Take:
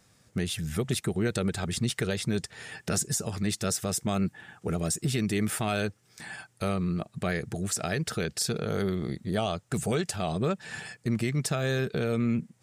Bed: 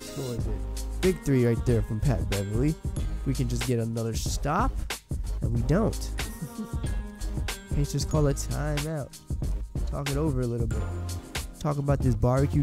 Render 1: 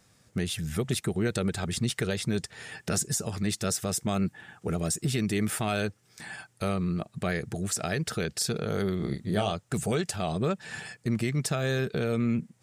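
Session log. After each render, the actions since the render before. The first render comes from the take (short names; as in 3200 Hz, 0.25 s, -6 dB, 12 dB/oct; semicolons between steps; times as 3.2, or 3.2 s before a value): 8.97–9.53 doubler 29 ms -6 dB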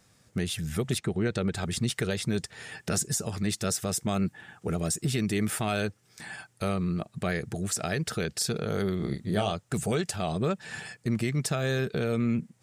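0.98–1.55 air absorption 75 m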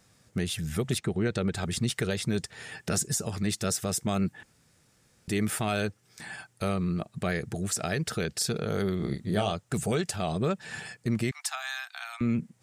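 4.43–5.28 room tone; 11.31–12.21 steep high-pass 720 Hz 96 dB/oct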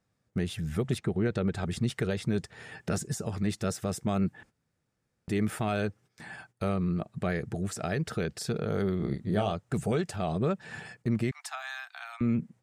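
gate -52 dBFS, range -13 dB; high shelf 2800 Hz -11 dB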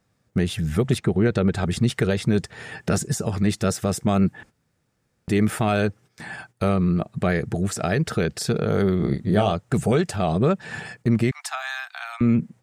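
gain +8.5 dB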